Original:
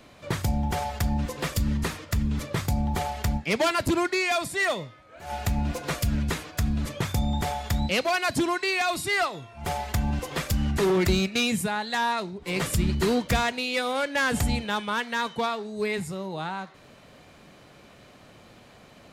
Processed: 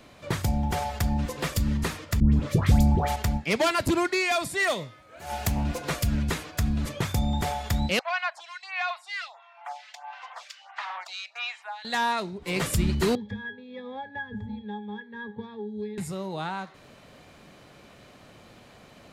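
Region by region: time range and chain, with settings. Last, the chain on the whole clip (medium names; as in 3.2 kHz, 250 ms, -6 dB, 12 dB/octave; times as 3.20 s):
2.20–3.16 s: expander -35 dBFS + bass shelf 500 Hz +7.5 dB + phase dispersion highs, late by 123 ms, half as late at 1.2 kHz
4.67–5.64 s: high-pass 49 Hz + treble shelf 7.1 kHz +9.5 dB + loudspeaker Doppler distortion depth 0.29 ms
7.99–11.85 s: steep high-pass 730 Hz 48 dB/octave + distance through air 150 m + lamp-driven phase shifter 1.5 Hz
13.15–15.98 s: low-pass 5.7 kHz + pitch-class resonator G#, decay 0.2 s + three bands compressed up and down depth 100%
whole clip: none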